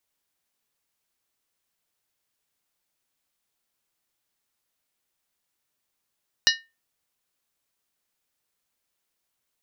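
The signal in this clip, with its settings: skin hit, lowest mode 1820 Hz, modes 7, decay 0.26 s, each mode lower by 0.5 dB, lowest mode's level -17 dB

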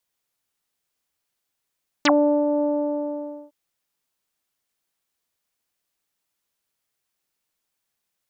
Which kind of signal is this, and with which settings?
synth note saw D4 24 dB/oct, low-pass 710 Hz, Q 10, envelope 3.5 oct, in 0.05 s, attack 3.8 ms, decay 0.40 s, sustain -5.5 dB, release 0.90 s, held 0.56 s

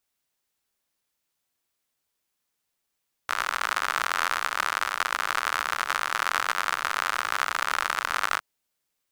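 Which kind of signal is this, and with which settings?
rain from filtered ticks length 5.11 s, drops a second 80, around 1300 Hz, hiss -29 dB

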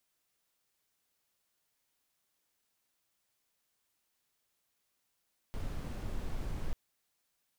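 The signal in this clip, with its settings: noise brown, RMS -36 dBFS 1.19 s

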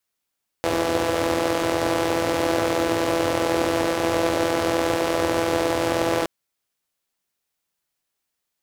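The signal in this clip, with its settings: four-cylinder engine model, steady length 5.62 s, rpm 5000, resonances 110/320/500 Hz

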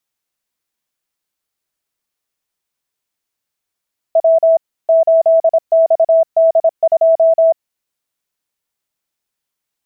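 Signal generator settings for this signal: Morse "W 8XD2" 26 wpm 654 Hz -6.5 dBFS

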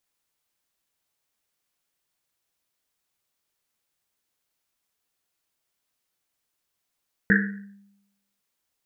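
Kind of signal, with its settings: Risset drum, pitch 200 Hz, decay 0.90 s, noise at 1700 Hz, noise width 380 Hz, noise 45%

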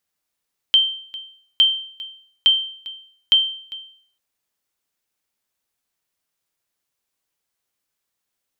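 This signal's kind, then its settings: sonar ping 3130 Hz, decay 0.56 s, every 0.86 s, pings 4, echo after 0.40 s, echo -19.5 dB -7 dBFS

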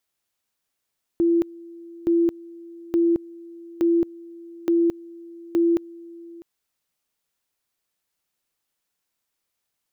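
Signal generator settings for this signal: two-level tone 338 Hz -15.5 dBFS, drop 22.5 dB, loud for 0.22 s, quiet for 0.65 s, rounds 6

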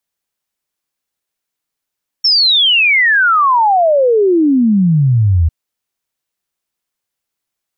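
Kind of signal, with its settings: log sweep 5500 Hz -> 77 Hz 3.25 s -7.5 dBFS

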